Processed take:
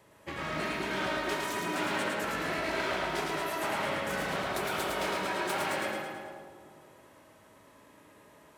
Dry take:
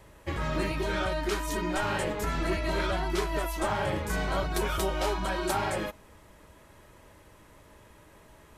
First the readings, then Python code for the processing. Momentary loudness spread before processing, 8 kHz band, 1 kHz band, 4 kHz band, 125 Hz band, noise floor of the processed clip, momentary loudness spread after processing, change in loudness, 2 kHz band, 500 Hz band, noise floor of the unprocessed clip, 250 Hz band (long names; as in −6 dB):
3 LU, −2.0 dB, −1.0 dB, 0.0 dB, −10.0 dB, −58 dBFS, 7 LU, −2.0 dB, +1.5 dB, −3.0 dB, −56 dBFS, −3.5 dB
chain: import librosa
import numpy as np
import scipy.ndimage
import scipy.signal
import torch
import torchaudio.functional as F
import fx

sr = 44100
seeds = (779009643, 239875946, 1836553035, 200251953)

p1 = np.minimum(x, 2.0 * 10.0 ** (-28.5 / 20.0) - x)
p2 = scipy.signal.sosfilt(scipy.signal.butter(2, 150.0, 'highpass', fs=sr, output='sos'), p1)
p3 = p2 + fx.echo_feedback(p2, sr, ms=109, feedback_pct=56, wet_db=-3, dry=0)
p4 = fx.rev_freeverb(p3, sr, rt60_s=2.2, hf_ratio=0.25, predelay_ms=45, drr_db=5.0)
p5 = fx.dynamic_eq(p4, sr, hz=2000.0, q=0.73, threshold_db=-46.0, ratio=4.0, max_db=4)
y = p5 * librosa.db_to_amplitude(-5.0)